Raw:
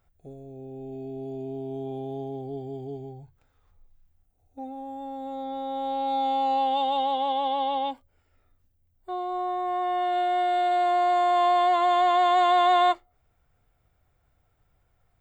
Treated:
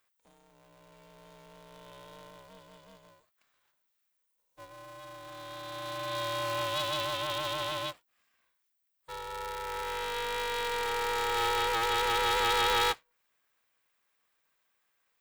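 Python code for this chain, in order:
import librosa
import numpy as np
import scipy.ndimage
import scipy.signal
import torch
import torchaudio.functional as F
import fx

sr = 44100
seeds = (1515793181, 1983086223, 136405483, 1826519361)

y = scipy.signal.sosfilt(scipy.signal.butter(2, 1500.0, 'highpass', fs=sr, output='sos'), x)
y = y * np.sign(np.sin(2.0 * np.pi * 230.0 * np.arange(len(y)) / sr))
y = y * librosa.db_to_amplitude(2.5)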